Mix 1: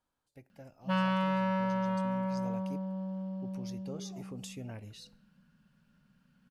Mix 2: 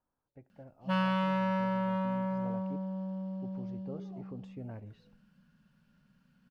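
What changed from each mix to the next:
speech: add LPF 1300 Hz 12 dB/oct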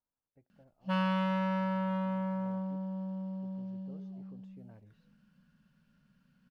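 speech -10.5 dB; reverb: off

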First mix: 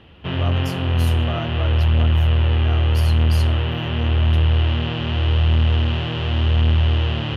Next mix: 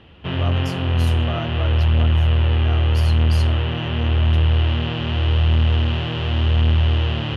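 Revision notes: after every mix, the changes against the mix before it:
speech: add LPF 9700 Hz 12 dB/oct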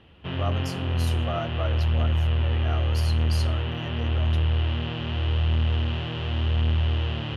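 background -6.5 dB

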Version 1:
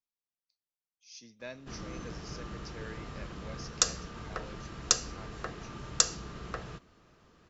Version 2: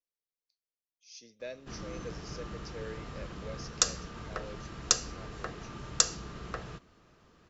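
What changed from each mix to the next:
speech: add graphic EQ 125/250/500/1000 Hz -6/-5/+10/-11 dB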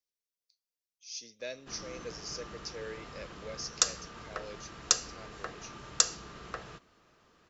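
speech: add high shelf 2700 Hz +11 dB; background: add low shelf 290 Hz -9 dB

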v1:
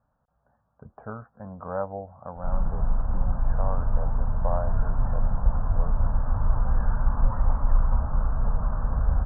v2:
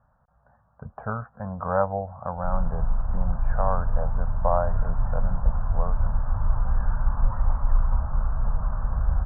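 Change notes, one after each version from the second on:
speech +9.5 dB; master: add bell 330 Hz -12 dB 0.97 oct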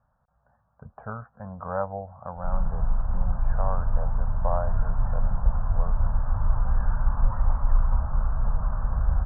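speech -5.5 dB

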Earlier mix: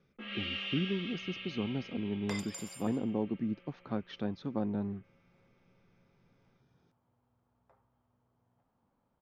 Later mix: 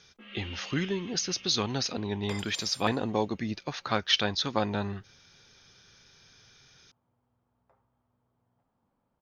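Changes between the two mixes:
speech: remove band-pass 220 Hz, Q 1.2; first sound -6.0 dB

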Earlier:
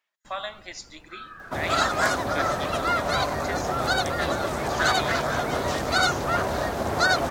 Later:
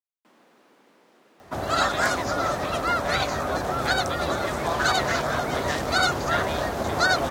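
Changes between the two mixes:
speech: entry +1.50 s; first sound: add HPF 240 Hz 24 dB/oct

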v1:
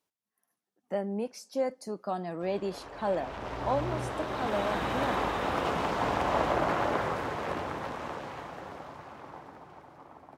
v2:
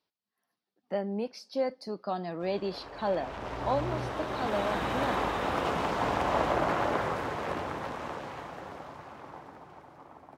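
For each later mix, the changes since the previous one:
speech: add resonant high shelf 5800 Hz -8.5 dB, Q 3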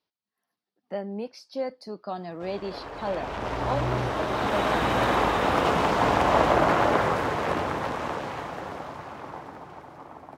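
background +8.5 dB; reverb: off

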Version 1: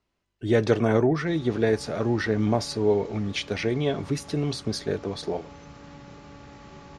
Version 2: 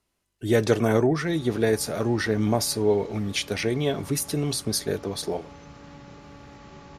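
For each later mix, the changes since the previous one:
speech: remove air absorption 110 m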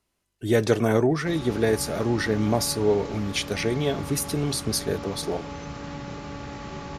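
background +9.5 dB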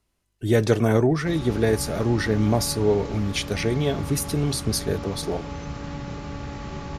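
master: add low shelf 120 Hz +9 dB

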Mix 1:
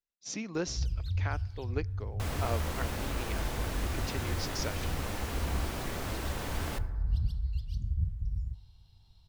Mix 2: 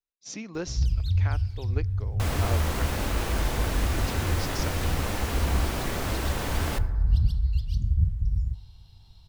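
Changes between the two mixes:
first sound +8.0 dB; second sound +6.5 dB

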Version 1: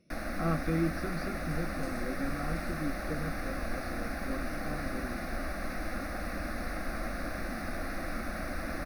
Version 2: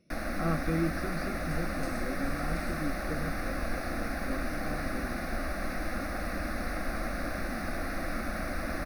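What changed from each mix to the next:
reverb: on, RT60 0.35 s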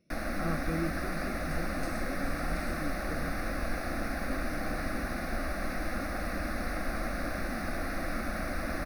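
speech -4.0 dB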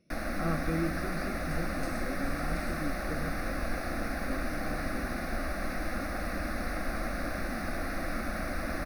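speech: send on

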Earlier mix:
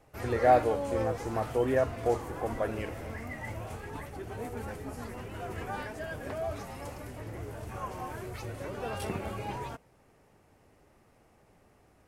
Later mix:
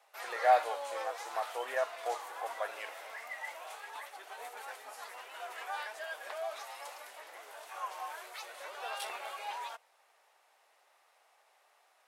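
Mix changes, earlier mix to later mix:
background: add bell 3700 Hz +6.5 dB 0.51 oct; master: add HPF 690 Hz 24 dB/oct

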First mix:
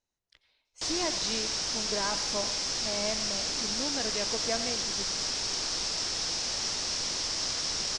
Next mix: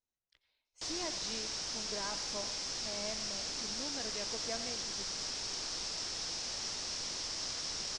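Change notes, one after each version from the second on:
speech -9.0 dB; background -7.5 dB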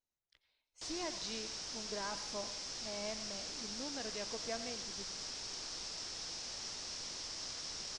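background -5.0 dB

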